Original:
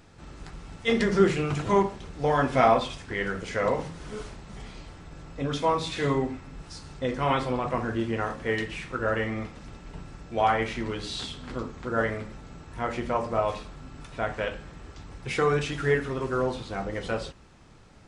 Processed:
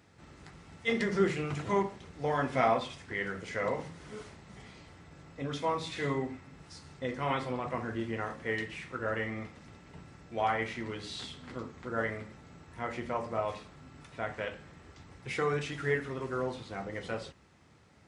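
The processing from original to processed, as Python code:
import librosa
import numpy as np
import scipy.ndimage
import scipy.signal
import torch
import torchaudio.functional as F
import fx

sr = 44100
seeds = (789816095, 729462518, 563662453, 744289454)

y = scipy.signal.sosfilt(scipy.signal.butter(4, 66.0, 'highpass', fs=sr, output='sos'), x)
y = fx.peak_eq(y, sr, hz=2000.0, db=5.5, octaves=0.24)
y = y * 10.0 ** (-7.0 / 20.0)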